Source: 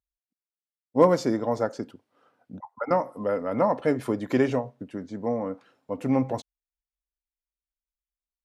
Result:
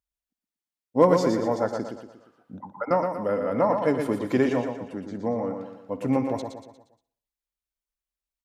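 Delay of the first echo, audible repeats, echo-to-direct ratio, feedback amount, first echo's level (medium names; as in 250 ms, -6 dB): 62 ms, 8, -5.0 dB, no regular repeats, -19.5 dB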